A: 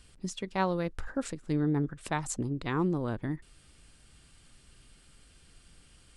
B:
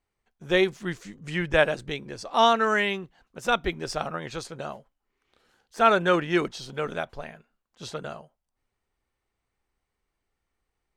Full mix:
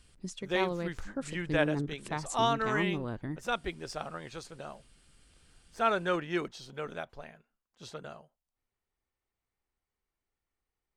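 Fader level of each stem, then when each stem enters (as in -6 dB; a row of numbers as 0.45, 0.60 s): -4.0, -8.5 dB; 0.00, 0.00 s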